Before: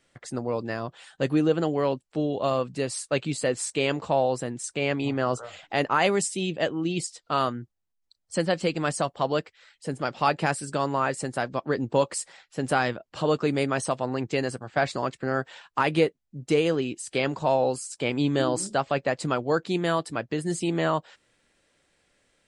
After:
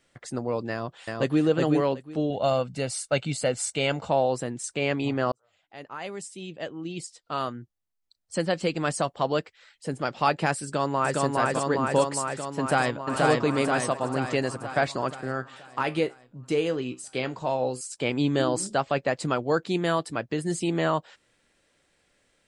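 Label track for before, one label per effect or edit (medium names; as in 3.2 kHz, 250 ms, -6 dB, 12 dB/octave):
0.700000	1.430000	echo throw 370 ms, feedback 15%, level -2 dB
2.300000	4.100000	comb 1.4 ms, depth 49%
5.320000	8.950000	fade in
10.630000	11.220000	echo throw 410 ms, feedback 75%, level -0.5 dB
12.590000	13.110000	echo throw 480 ms, feedback 60%, level -1 dB
15.210000	17.810000	feedback comb 63 Hz, decay 0.22 s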